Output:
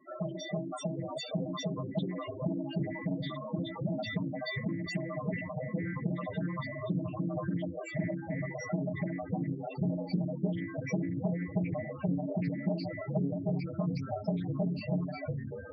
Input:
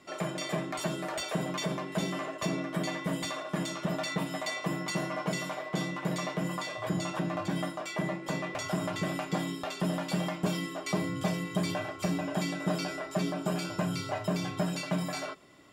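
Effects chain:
delay with pitch and tempo change per echo 716 ms, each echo −4 semitones, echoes 3, each echo −6 dB
spectral peaks only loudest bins 8
highs frequency-modulated by the lows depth 0.24 ms

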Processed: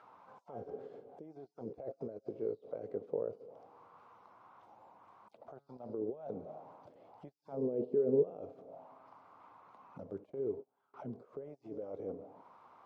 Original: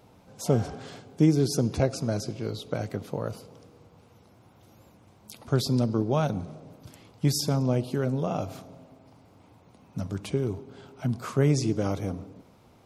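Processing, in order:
0:09.98–0:10.94: noise gate −36 dBFS, range −28 dB
first difference
compressor whose output falls as the input rises −55 dBFS, ratio −1
0:05.36–0:05.90: tuned comb filter 140 Hz, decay 0.48 s, harmonics all, mix 40%
0:07.52–0:08.23: hollow resonant body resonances 210/410 Hz, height 10 dB, ringing for 25 ms
envelope-controlled low-pass 450–1,400 Hz down, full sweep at −48 dBFS
level +6 dB

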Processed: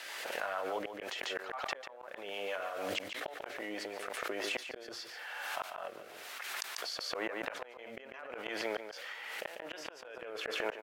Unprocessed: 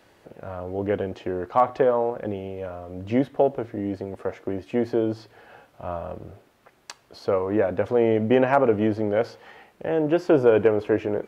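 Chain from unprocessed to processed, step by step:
high-pass filter 1,300 Hz 12 dB per octave
downward compressor 6 to 1, threshold −36 dBFS, peak gain reduction 14 dB
gate with flip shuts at −31 dBFS, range −36 dB
rotating-speaker cabinet horn 6 Hz, later 0.9 Hz, at 0:03.94
single-tap delay 150 ms −10 dB
wrong playback speed 24 fps film run at 25 fps
background raised ahead of every attack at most 25 dB per second
level +10.5 dB

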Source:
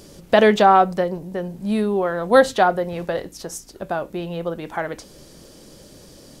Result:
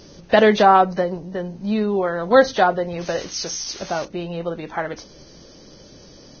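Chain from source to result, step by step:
0:03.01–0:04.05: spike at every zero crossing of −18.5 dBFS
Ogg Vorbis 16 kbit/s 16,000 Hz

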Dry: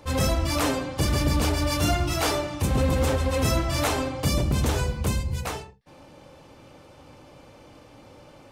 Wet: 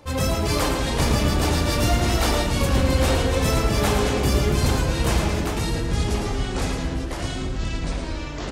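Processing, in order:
delay with pitch and tempo change per echo 235 ms, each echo −4 semitones, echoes 3
repeating echo 111 ms, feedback 36%, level −7 dB

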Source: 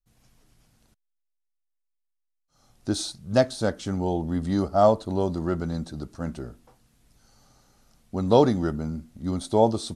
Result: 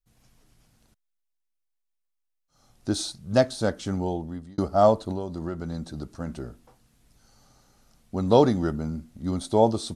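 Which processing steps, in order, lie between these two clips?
0:03.95–0:04.58: fade out
0:05.11–0:06.30: downward compressor 6 to 1, threshold −28 dBFS, peak gain reduction 8.5 dB

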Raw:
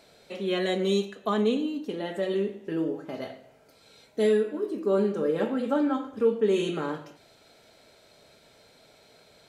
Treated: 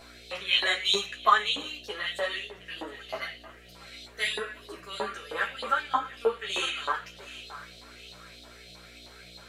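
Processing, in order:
notch filter 880 Hz, Q 12
feedback echo with a high-pass in the loop 714 ms, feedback 33%, level −16 dB
auto-filter high-pass saw up 3.2 Hz 860–4,000 Hz
hum with harmonics 60 Hz, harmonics 12, −60 dBFS −3 dB per octave
string-ensemble chorus
level +9 dB

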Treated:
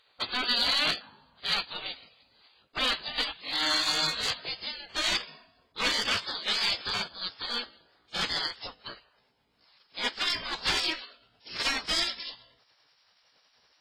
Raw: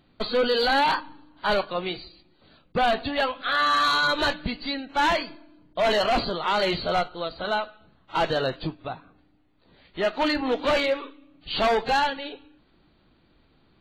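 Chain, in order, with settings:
pitch glide at a constant tempo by +3.5 semitones starting unshifted
gate on every frequency bin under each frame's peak −15 dB weak
parametric band 6,500 Hz +8 dB 2.2 octaves

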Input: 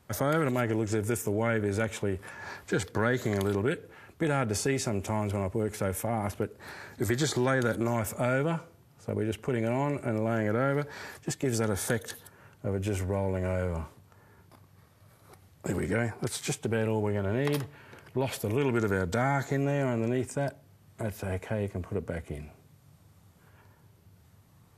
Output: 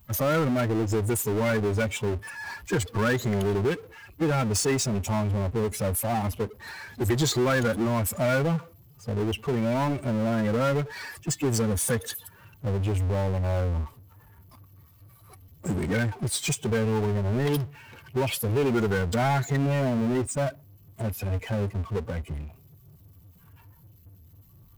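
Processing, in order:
spectral dynamics exaggerated over time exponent 2
power curve on the samples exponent 0.5
level +2 dB

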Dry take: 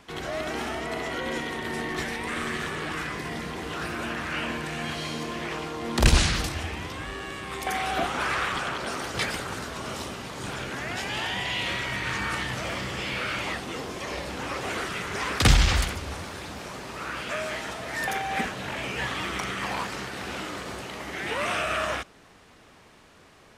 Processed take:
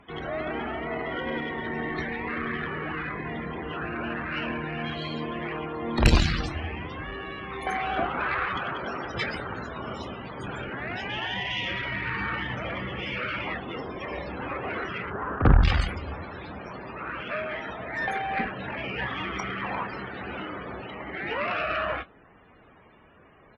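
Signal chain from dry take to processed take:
0:15.10–0:15.64: Butterworth low-pass 1,600 Hz 36 dB per octave
spectral peaks only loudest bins 64
double-tracking delay 26 ms −13.5 dB
harmonic generator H 4 −27 dB, 6 −12 dB, 8 −21 dB, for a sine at −4.5 dBFS

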